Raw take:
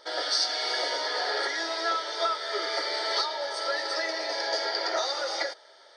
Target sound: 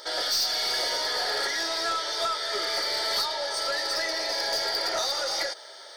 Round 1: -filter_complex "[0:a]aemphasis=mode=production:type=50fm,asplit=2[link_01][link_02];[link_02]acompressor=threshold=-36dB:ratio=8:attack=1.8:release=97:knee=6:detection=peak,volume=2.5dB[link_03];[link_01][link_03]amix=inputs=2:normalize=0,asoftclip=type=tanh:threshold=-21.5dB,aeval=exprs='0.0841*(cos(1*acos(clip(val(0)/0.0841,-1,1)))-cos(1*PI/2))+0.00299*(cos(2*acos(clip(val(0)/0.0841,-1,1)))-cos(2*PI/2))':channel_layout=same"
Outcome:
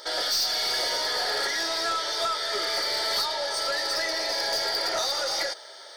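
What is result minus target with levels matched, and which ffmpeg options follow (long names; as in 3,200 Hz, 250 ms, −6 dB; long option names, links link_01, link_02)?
downward compressor: peak gain reduction −6 dB
-filter_complex "[0:a]aemphasis=mode=production:type=50fm,asplit=2[link_01][link_02];[link_02]acompressor=threshold=-43dB:ratio=8:attack=1.8:release=97:knee=6:detection=peak,volume=2.5dB[link_03];[link_01][link_03]amix=inputs=2:normalize=0,asoftclip=type=tanh:threshold=-21.5dB,aeval=exprs='0.0841*(cos(1*acos(clip(val(0)/0.0841,-1,1)))-cos(1*PI/2))+0.00299*(cos(2*acos(clip(val(0)/0.0841,-1,1)))-cos(2*PI/2))':channel_layout=same"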